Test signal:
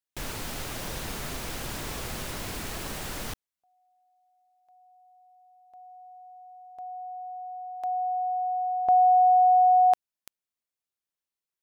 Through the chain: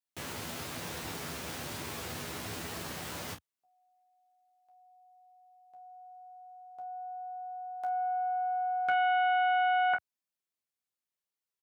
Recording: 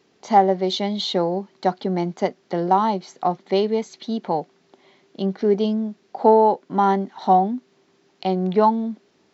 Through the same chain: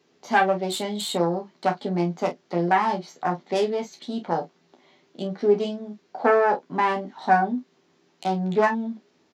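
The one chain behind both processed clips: self-modulated delay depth 0.27 ms; high-pass 82 Hz 24 dB/octave; on a send: early reflections 12 ms -4 dB, 29 ms -7.5 dB, 48 ms -11.5 dB; on the sum: trim -4.5 dB

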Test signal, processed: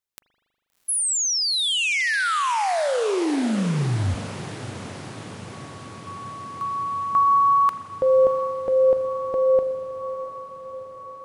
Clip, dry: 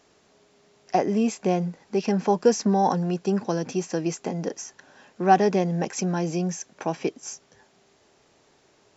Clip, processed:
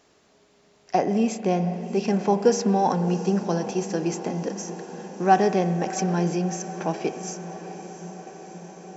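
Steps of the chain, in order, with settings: echo that smears into a reverb 704 ms, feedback 71%, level -14 dB; spring tank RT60 2 s, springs 40 ms, chirp 60 ms, DRR 10.5 dB

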